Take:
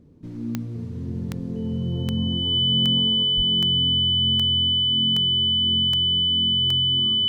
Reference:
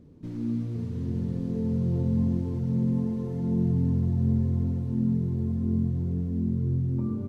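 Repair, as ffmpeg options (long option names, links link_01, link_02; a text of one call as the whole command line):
ffmpeg -i in.wav -filter_complex "[0:a]adeclick=threshold=4,bandreject=frequency=3000:width=30,asplit=3[link_01][link_02][link_03];[link_01]afade=type=out:start_time=3.36:duration=0.02[link_04];[link_02]highpass=frequency=140:width=0.5412,highpass=frequency=140:width=1.3066,afade=type=in:start_time=3.36:duration=0.02,afade=type=out:start_time=3.48:duration=0.02[link_05];[link_03]afade=type=in:start_time=3.48:duration=0.02[link_06];[link_04][link_05][link_06]amix=inputs=3:normalize=0,asetnsamples=nb_out_samples=441:pad=0,asendcmd='3.23 volume volume 4dB',volume=0dB" out.wav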